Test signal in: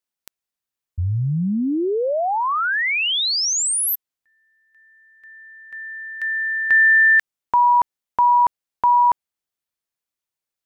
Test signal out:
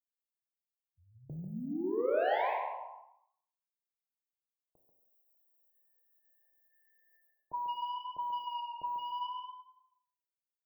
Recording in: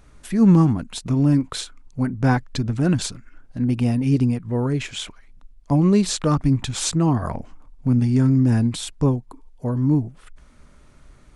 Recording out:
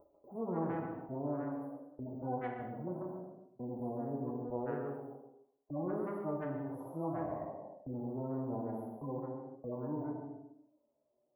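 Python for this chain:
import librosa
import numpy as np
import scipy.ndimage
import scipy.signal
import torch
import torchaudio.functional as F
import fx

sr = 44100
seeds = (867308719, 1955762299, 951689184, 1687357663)

y = fx.hpss_only(x, sr, part='harmonic')
y = scipy.signal.sosfilt(scipy.signal.butter(2, 980.0, 'highpass', fs=sr, output='sos'), y)
y = fx.gate_hold(y, sr, open_db=-51.0, close_db=-56.0, hold_ms=16.0, range_db=-25, attack_ms=0.47, release_ms=54.0)
y = scipy.signal.sosfilt(scipy.signal.cheby2(5, 70, [1700.0, 9000.0], 'bandstop', fs=sr, output='sos'), y)
y = fx.peak_eq(y, sr, hz=3000.0, db=-4.5, octaves=1.9)
y = fx.echo_tape(y, sr, ms=140, feedback_pct=24, wet_db=-3.5, lp_hz=5500.0, drive_db=32.0, wow_cents=36)
y = fx.rev_gated(y, sr, seeds[0], gate_ms=280, shape='falling', drr_db=1.5)
y = fx.spectral_comp(y, sr, ratio=2.0)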